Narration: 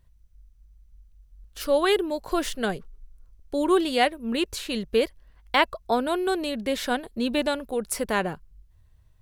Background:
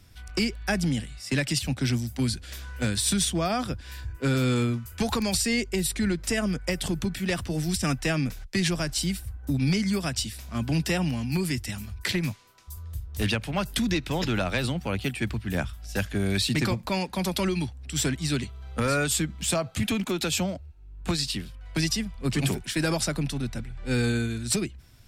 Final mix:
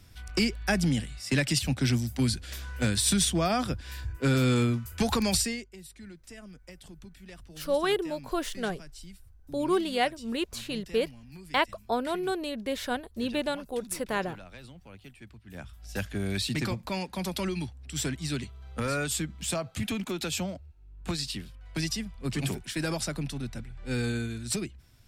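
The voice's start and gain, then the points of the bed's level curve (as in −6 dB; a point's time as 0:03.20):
6.00 s, −5.0 dB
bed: 0:05.40 0 dB
0:05.71 −20.5 dB
0:15.41 −20.5 dB
0:15.87 −5 dB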